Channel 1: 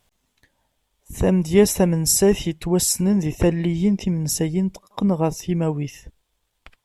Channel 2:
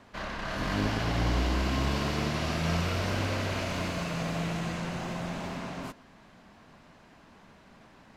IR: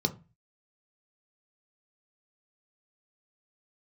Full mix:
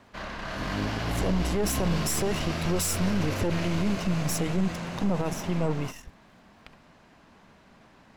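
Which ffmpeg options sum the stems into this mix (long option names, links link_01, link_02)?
-filter_complex "[0:a]aeval=exprs='if(lt(val(0),0),0.251*val(0),val(0))':channel_layout=same,dynaudnorm=framelen=220:gausssize=7:maxgain=11dB,acrossover=split=1900[link_01][link_02];[link_01]aeval=exprs='val(0)*(1-0.5/2+0.5/2*cos(2*PI*3.7*n/s))':channel_layout=same[link_03];[link_02]aeval=exprs='val(0)*(1-0.5/2-0.5/2*cos(2*PI*3.7*n/s))':channel_layout=same[link_04];[link_03][link_04]amix=inputs=2:normalize=0,volume=-4.5dB[link_05];[1:a]volume=-0.5dB[link_06];[link_05][link_06]amix=inputs=2:normalize=0,alimiter=limit=-17.5dB:level=0:latency=1:release=21"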